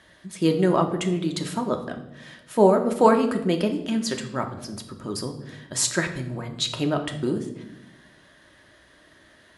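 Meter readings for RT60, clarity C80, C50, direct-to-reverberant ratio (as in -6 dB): 0.90 s, 13.0 dB, 10.5 dB, 4.0 dB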